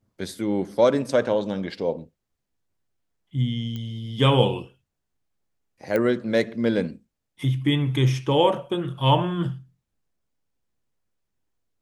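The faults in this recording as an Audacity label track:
3.760000	3.760000	click −21 dBFS
5.960000	5.960000	click −13 dBFS

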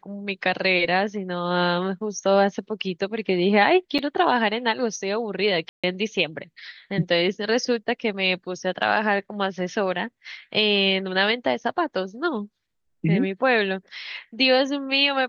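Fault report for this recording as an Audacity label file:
3.980000	3.990000	drop-out 6.6 ms
5.690000	5.840000	drop-out 146 ms

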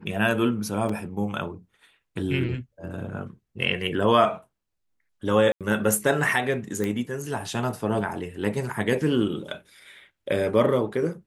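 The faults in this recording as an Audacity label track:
0.890000	0.890000	drop-out 4.2 ms
5.520000	5.610000	drop-out 87 ms
6.840000	6.840000	click −15 dBFS

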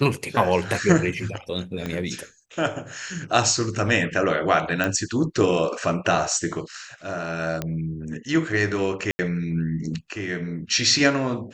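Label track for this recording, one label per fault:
1.860000	1.860000	click −15 dBFS
4.840000	4.840000	click −10 dBFS
7.620000	7.620000	click −12 dBFS
9.110000	9.190000	drop-out 80 ms

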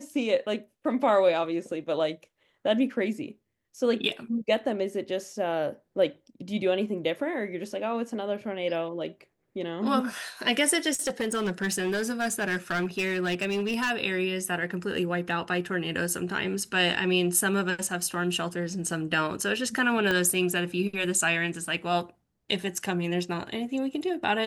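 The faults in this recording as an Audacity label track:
10.930000	13.910000	clipping −23.5 dBFS
20.110000	20.110000	click −13 dBFS

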